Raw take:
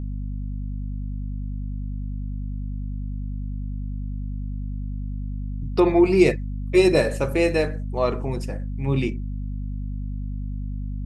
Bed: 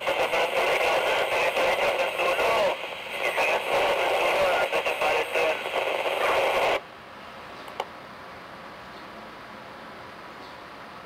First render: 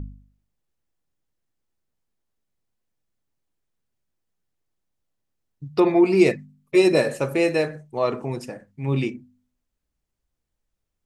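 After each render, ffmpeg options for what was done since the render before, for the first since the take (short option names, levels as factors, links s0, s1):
-af "bandreject=f=50:t=h:w=4,bandreject=f=100:t=h:w=4,bandreject=f=150:t=h:w=4,bandreject=f=200:t=h:w=4,bandreject=f=250:t=h:w=4"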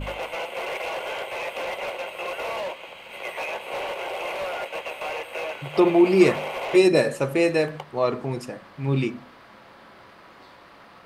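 -filter_complex "[1:a]volume=0.447[s0];[0:a][s0]amix=inputs=2:normalize=0"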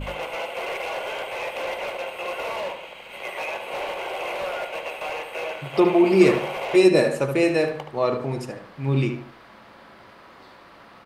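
-filter_complex "[0:a]asplit=2[s0][s1];[s1]adelay=74,lowpass=f=3400:p=1,volume=0.447,asplit=2[s2][s3];[s3]adelay=74,lowpass=f=3400:p=1,volume=0.35,asplit=2[s4][s5];[s5]adelay=74,lowpass=f=3400:p=1,volume=0.35,asplit=2[s6][s7];[s7]adelay=74,lowpass=f=3400:p=1,volume=0.35[s8];[s0][s2][s4][s6][s8]amix=inputs=5:normalize=0"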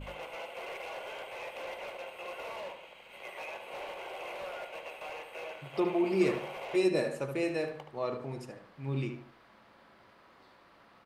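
-af "volume=0.251"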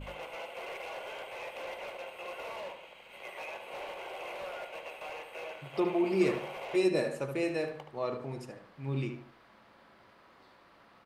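-af anull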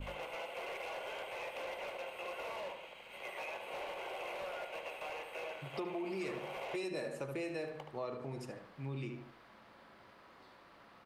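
-filter_complex "[0:a]acrossover=split=610|740[s0][s1][s2];[s0]alimiter=level_in=1.68:limit=0.0631:level=0:latency=1,volume=0.596[s3];[s3][s1][s2]amix=inputs=3:normalize=0,acompressor=threshold=0.0112:ratio=3"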